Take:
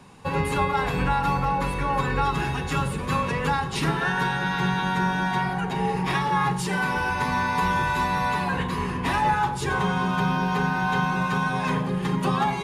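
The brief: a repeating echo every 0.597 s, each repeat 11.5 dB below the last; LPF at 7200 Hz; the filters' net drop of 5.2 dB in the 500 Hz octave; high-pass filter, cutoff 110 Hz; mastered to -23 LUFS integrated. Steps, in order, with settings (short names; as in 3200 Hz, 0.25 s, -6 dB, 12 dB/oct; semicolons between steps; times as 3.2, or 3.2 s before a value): HPF 110 Hz; LPF 7200 Hz; bell 500 Hz -6.5 dB; feedback echo 0.597 s, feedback 27%, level -11.5 dB; gain +2.5 dB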